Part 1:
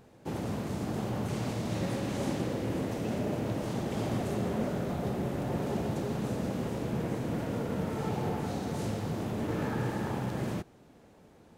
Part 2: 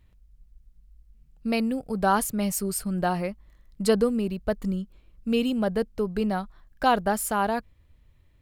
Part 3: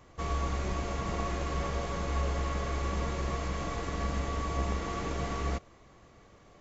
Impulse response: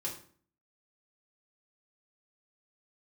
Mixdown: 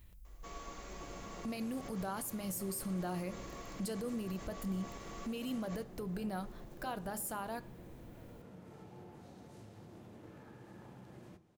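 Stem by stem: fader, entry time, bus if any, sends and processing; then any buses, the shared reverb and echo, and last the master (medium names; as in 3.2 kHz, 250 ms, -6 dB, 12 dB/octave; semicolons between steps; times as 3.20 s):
-15.0 dB, 0.75 s, no bus, send -9 dB, compression 6:1, threshold -38 dBFS, peak gain reduction 11.5 dB
-0.5 dB, 0.00 s, bus A, send -17 dB, treble shelf 11 kHz +6 dB; compression, threshold -30 dBFS, peak gain reduction 13.5 dB
-1.0 dB, 0.25 s, bus A, no send, high-pass 200 Hz 12 dB/octave; auto duck -12 dB, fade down 0.45 s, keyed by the second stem
bus A: 0.0 dB, treble shelf 6.6 kHz +11.5 dB; peak limiter -33.5 dBFS, peak gain reduction 20.5 dB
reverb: on, RT60 0.50 s, pre-delay 3 ms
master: none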